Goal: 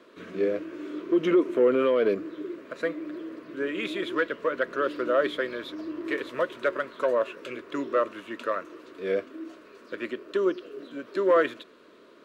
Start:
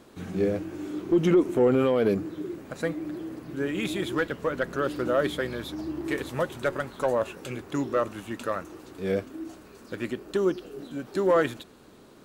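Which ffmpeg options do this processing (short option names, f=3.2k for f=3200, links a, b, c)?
-filter_complex "[0:a]asuperstop=centerf=800:order=4:qfactor=3.1,acrossover=split=280 4200:gain=0.0708 1 0.158[a][b][c];[a][b][c]amix=inputs=3:normalize=0,volume=2dB"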